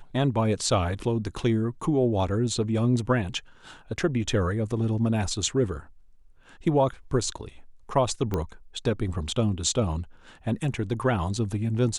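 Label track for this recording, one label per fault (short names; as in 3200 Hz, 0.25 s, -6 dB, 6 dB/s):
8.340000	8.340000	pop -15 dBFS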